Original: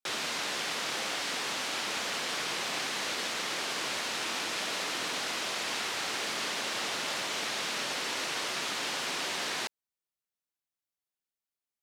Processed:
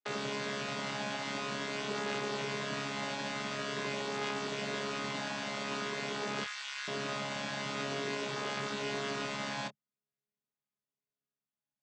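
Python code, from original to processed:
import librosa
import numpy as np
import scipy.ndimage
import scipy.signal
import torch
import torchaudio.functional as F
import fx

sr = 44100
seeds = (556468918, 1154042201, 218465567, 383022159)

y = fx.chord_vocoder(x, sr, chord='bare fifth', root=49)
y = fx.highpass(y, sr, hz=1300.0, slope=24, at=(6.44, 6.88))
y = fx.chorus_voices(y, sr, voices=6, hz=0.23, base_ms=23, depth_ms=2.0, mix_pct=25)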